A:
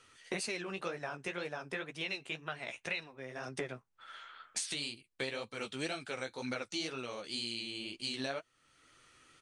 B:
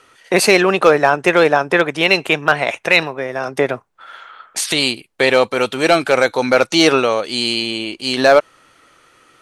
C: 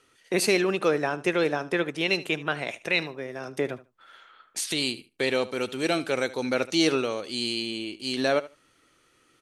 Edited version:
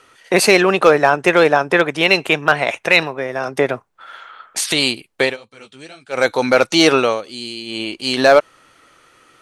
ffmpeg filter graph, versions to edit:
-filter_complex "[1:a]asplit=3[s0][s1][s2];[s0]atrim=end=5.37,asetpts=PTS-STARTPTS[s3];[0:a]atrim=start=5.21:end=6.25,asetpts=PTS-STARTPTS[s4];[s1]atrim=start=6.09:end=7.25,asetpts=PTS-STARTPTS[s5];[2:a]atrim=start=7.09:end=7.81,asetpts=PTS-STARTPTS[s6];[s2]atrim=start=7.65,asetpts=PTS-STARTPTS[s7];[s3][s4]acrossfade=d=0.16:c1=tri:c2=tri[s8];[s8][s5]acrossfade=d=0.16:c1=tri:c2=tri[s9];[s9][s6]acrossfade=d=0.16:c1=tri:c2=tri[s10];[s10][s7]acrossfade=d=0.16:c1=tri:c2=tri"

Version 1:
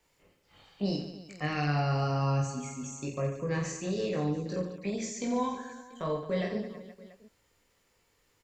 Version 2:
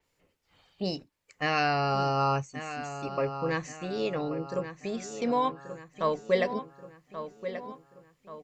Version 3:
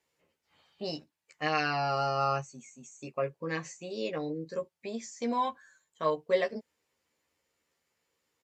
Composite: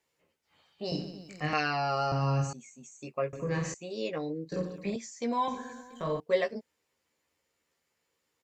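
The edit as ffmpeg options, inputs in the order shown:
-filter_complex "[0:a]asplit=5[s0][s1][s2][s3][s4];[2:a]asplit=6[s5][s6][s7][s8][s9][s10];[s5]atrim=end=0.922[s11];[s0]atrim=start=0.918:end=1.532[s12];[s6]atrim=start=1.528:end=2.122[s13];[s1]atrim=start=2.118:end=2.532[s14];[s7]atrim=start=2.528:end=3.332[s15];[s2]atrim=start=3.328:end=3.742[s16];[s8]atrim=start=3.738:end=4.522[s17];[s3]atrim=start=4.518:end=4.962[s18];[s9]atrim=start=4.958:end=5.482[s19];[s4]atrim=start=5.478:end=6.202[s20];[s10]atrim=start=6.198[s21];[s11][s12]acrossfade=d=0.004:c1=hsin:c2=hsin[s22];[s22][s13]acrossfade=d=0.004:c1=hsin:c2=hsin[s23];[s23][s14]acrossfade=d=0.004:c1=hsin:c2=hsin[s24];[s24][s15]acrossfade=d=0.004:c1=hsin:c2=hsin[s25];[s25][s16]acrossfade=d=0.004:c1=hsin:c2=hsin[s26];[s26][s17]acrossfade=d=0.004:c1=hsin:c2=hsin[s27];[s27][s18]acrossfade=d=0.004:c1=hsin:c2=hsin[s28];[s28][s19]acrossfade=d=0.004:c1=hsin:c2=hsin[s29];[s29][s20]acrossfade=d=0.004:c1=hsin:c2=hsin[s30];[s30][s21]acrossfade=d=0.004:c1=hsin:c2=hsin"

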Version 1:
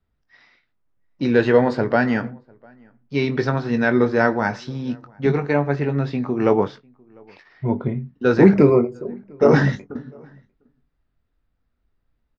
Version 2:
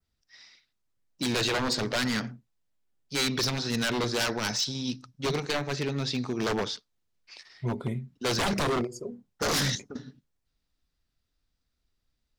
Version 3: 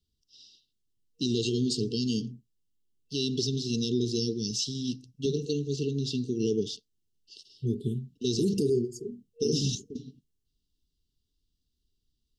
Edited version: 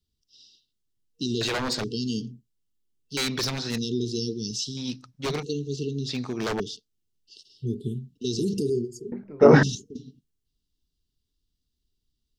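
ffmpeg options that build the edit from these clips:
-filter_complex "[1:a]asplit=4[s0][s1][s2][s3];[2:a]asplit=6[s4][s5][s6][s7][s8][s9];[s4]atrim=end=1.412[s10];[s0]atrim=start=1.408:end=1.842[s11];[s5]atrim=start=1.838:end=3.172[s12];[s1]atrim=start=3.168:end=3.782[s13];[s6]atrim=start=3.778:end=4.772[s14];[s2]atrim=start=4.768:end=5.432[s15];[s7]atrim=start=5.428:end=6.092[s16];[s3]atrim=start=6.088:end=6.602[s17];[s8]atrim=start=6.598:end=9.122[s18];[0:a]atrim=start=9.118:end=9.632[s19];[s9]atrim=start=9.628[s20];[s10][s11]acrossfade=d=0.004:c1=hsin:c2=hsin[s21];[s21][s12]acrossfade=d=0.004:c1=hsin:c2=hsin[s22];[s22][s13]acrossfade=d=0.004:c1=hsin:c2=hsin[s23];[s23][s14]acrossfade=d=0.004:c1=hsin:c2=hsin[s24];[s24][s15]acrossfade=d=0.004:c1=hsin:c2=hsin[s25];[s25][s16]acrossfade=d=0.004:c1=hsin:c2=hsin[s26];[s26][s17]acrossfade=d=0.004:c1=hsin:c2=hsin[s27];[s27][s18]acrossfade=d=0.004:c1=hsin:c2=hsin[s28];[s28][s19]acrossfade=d=0.004:c1=hsin:c2=hsin[s29];[s29][s20]acrossfade=d=0.004:c1=hsin:c2=hsin"

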